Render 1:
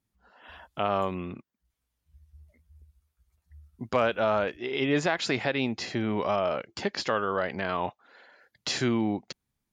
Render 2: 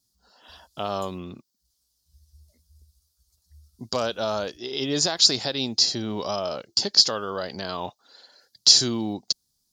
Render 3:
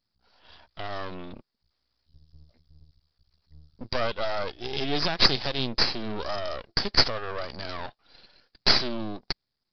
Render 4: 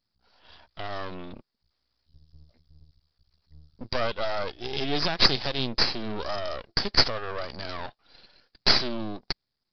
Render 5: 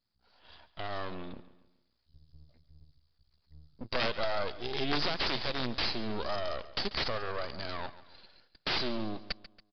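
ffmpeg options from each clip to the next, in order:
ffmpeg -i in.wav -af "highshelf=frequency=3300:width_type=q:width=3:gain=13.5,volume=-1dB" out.wav
ffmpeg -i in.wav -af "aresample=11025,aeval=exprs='max(val(0),0)':channel_layout=same,aresample=44100,dynaudnorm=framelen=220:gausssize=11:maxgain=5dB" out.wav
ffmpeg -i in.wav -af anull out.wav
ffmpeg -i in.wav -af "aeval=exprs='(mod(6.68*val(0)+1,2)-1)/6.68':channel_layout=same,aresample=11025,aresample=44100,aecho=1:1:140|280|420|560:0.158|0.0682|0.0293|0.0126,volume=-3dB" out.wav

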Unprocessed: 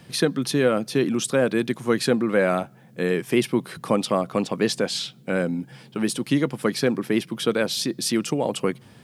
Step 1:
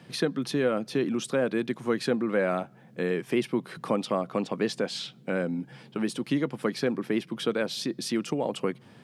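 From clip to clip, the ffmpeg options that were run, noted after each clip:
ffmpeg -i in.wav -filter_complex "[0:a]highpass=130,asplit=2[link_01][link_02];[link_02]acompressor=threshold=-28dB:ratio=6,volume=0.5dB[link_03];[link_01][link_03]amix=inputs=2:normalize=0,lowpass=frequency=3600:poles=1,volume=-7.5dB" out.wav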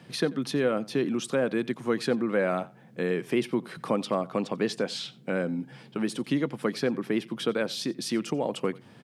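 ffmpeg -i in.wav -af "aecho=1:1:89:0.0794" out.wav

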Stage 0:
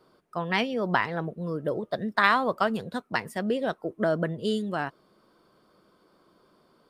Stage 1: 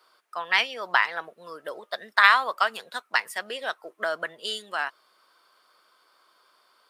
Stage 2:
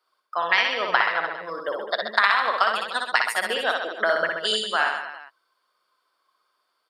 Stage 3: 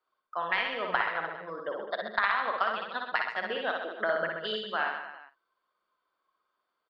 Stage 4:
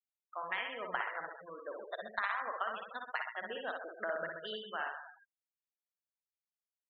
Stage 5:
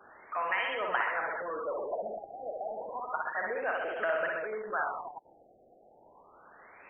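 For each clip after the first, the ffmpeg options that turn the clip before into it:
ffmpeg -i in.wav -af "highpass=1200,volume=7dB" out.wav
ffmpeg -i in.wav -af "afftdn=noise_reduction=19:noise_floor=-47,acompressor=threshold=-23dB:ratio=6,aecho=1:1:60|129|208.4|299.6|404.5:0.631|0.398|0.251|0.158|0.1,volume=6.5dB" out.wav
ffmpeg -i in.wav -filter_complex "[0:a]lowpass=frequency=4200:width=0.5412,lowpass=frequency=4200:width=1.3066,aemphasis=mode=reproduction:type=bsi,asplit=2[link_01][link_02];[link_02]adelay=49,volume=-13dB[link_03];[link_01][link_03]amix=inputs=2:normalize=0,volume=-7.5dB" out.wav
ffmpeg -i in.wav -af "afftfilt=real='re*gte(hypot(re,im),0.02)':imag='im*gte(hypot(re,im),0.02)':win_size=1024:overlap=0.75,volume=-8.5dB" out.wav
ffmpeg -i in.wav -af "aeval=exprs='val(0)+0.5*0.0158*sgn(val(0))':channel_layout=same,bass=frequency=250:gain=-15,treble=frequency=4000:gain=-11,afftfilt=real='re*lt(b*sr/1024,780*pow(3300/780,0.5+0.5*sin(2*PI*0.31*pts/sr)))':imag='im*lt(b*sr/1024,780*pow(3300/780,0.5+0.5*sin(2*PI*0.31*pts/sr)))':win_size=1024:overlap=0.75,volume=4.5dB" out.wav

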